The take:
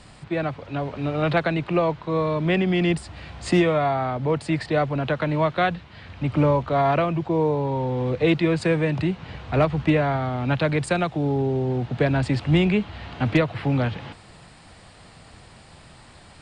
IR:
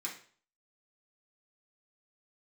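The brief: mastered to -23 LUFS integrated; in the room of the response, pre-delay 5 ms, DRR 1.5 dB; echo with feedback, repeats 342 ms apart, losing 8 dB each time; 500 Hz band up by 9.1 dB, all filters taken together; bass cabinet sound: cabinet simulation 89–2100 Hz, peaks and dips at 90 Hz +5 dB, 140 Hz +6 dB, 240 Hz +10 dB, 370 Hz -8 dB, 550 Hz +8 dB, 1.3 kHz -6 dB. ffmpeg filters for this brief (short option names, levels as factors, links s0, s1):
-filter_complex "[0:a]equalizer=f=500:t=o:g=7,aecho=1:1:342|684|1026|1368|1710:0.398|0.159|0.0637|0.0255|0.0102,asplit=2[s0][s1];[1:a]atrim=start_sample=2205,adelay=5[s2];[s1][s2]afir=irnorm=-1:irlink=0,volume=0.794[s3];[s0][s3]amix=inputs=2:normalize=0,highpass=f=89:w=0.5412,highpass=f=89:w=1.3066,equalizer=f=90:t=q:w=4:g=5,equalizer=f=140:t=q:w=4:g=6,equalizer=f=240:t=q:w=4:g=10,equalizer=f=370:t=q:w=4:g=-8,equalizer=f=550:t=q:w=4:g=8,equalizer=f=1300:t=q:w=4:g=-6,lowpass=f=2100:w=0.5412,lowpass=f=2100:w=1.3066,volume=0.422"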